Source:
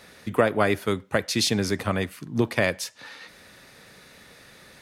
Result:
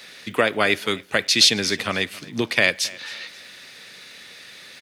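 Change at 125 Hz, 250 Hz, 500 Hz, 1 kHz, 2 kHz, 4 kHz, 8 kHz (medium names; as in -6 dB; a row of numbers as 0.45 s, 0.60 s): -5.5 dB, -1.5 dB, -0.5 dB, +1.0 dB, +7.5 dB, +11.0 dB, +7.0 dB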